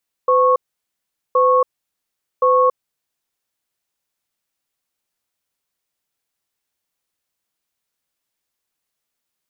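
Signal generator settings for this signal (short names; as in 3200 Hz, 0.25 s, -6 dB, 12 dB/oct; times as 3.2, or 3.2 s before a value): cadence 508 Hz, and 1100 Hz, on 0.28 s, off 0.79 s, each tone -13.5 dBFS 3.12 s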